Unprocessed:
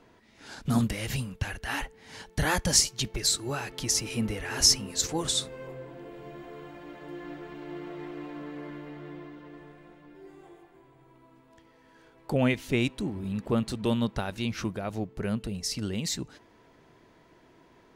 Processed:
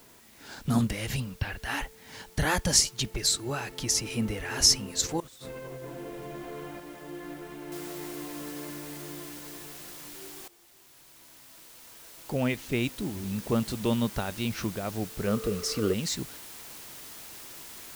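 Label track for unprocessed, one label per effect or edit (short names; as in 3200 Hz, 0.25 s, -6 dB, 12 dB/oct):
1.200000	1.610000	spectral delete 5600–12000 Hz
5.200000	6.800000	negative-ratio compressor -43 dBFS
7.720000	7.720000	noise floor step -57 dB -45 dB
10.480000	13.600000	fade in, from -16.5 dB
15.260000	15.920000	small resonant body resonances 460/1200 Hz, height 13 dB -> 18 dB, ringing for 25 ms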